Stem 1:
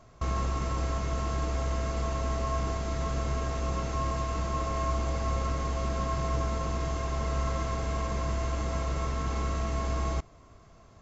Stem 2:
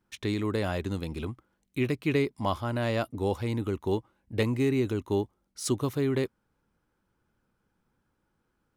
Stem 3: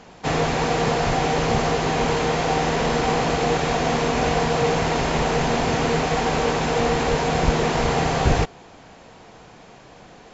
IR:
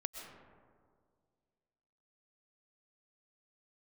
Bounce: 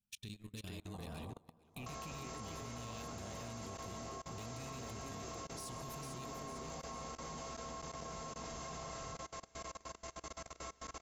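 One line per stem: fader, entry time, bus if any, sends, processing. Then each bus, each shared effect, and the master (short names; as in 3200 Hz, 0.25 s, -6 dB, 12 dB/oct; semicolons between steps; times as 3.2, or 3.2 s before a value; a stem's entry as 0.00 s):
-8.0 dB, 1.65 s, no bus, send -22.5 dB, echo send -11.5 dB, tone controls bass -14 dB, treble +3 dB; compressor 8:1, threshold -36 dBFS, peak gain reduction 8 dB
-5.0 dB, 0.00 s, bus A, send -11.5 dB, echo send -8.5 dB, de-esser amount 85%; compressor 20:1, threshold -34 dBFS, peak gain reduction 13.5 dB
-15.5 dB, 0.70 s, bus A, send -4 dB, no echo send, Chebyshev low-pass 1200 Hz, order 8; tilt +2 dB/oct; negative-ratio compressor -30 dBFS, ratio -0.5
bus A: 0.0 dB, brick-wall FIR band-stop 250–2300 Hz; limiter -42 dBFS, peak gain reduction 8 dB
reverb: on, RT60 2.0 s, pre-delay 85 ms
echo: feedback echo 0.447 s, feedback 30%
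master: high shelf 4300 Hz +9.5 dB; level quantiser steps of 23 dB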